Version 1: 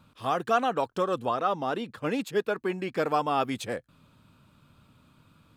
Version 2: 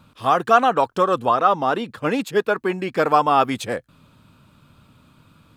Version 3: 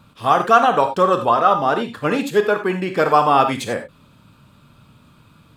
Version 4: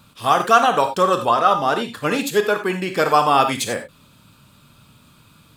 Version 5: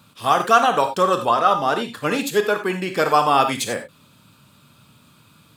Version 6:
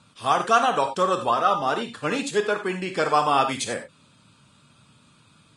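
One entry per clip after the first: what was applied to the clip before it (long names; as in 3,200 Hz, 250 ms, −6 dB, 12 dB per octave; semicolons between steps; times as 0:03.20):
dynamic equaliser 1,100 Hz, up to +5 dB, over −36 dBFS, Q 1; level +6.5 dB
reverb whose tail is shaped and stops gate 110 ms flat, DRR 6 dB; level +1.5 dB
high-shelf EQ 3,300 Hz +11.5 dB; level −2 dB
high-pass filter 89 Hz; level −1 dB
level −4 dB; Ogg Vorbis 32 kbit/s 22,050 Hz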